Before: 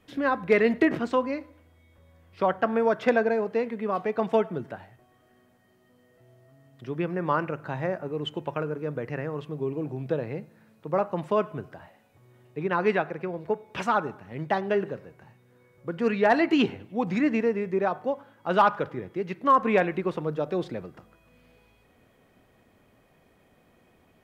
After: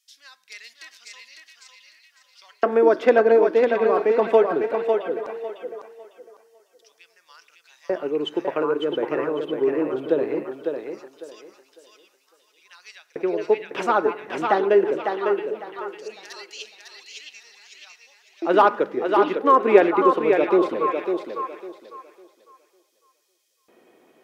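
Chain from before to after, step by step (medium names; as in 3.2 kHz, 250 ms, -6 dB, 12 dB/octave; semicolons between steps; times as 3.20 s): repeats whose band climbs or falls 669 ms, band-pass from 3 kHz, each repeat -1.4 oct, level -5.5 dB; LFO high-pass square 0.19 Hz 350–5500 Hz; thinning echo 552 ms, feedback 27%, high-pass 240 Hz, level -4.5 dB; trim +2.5 dB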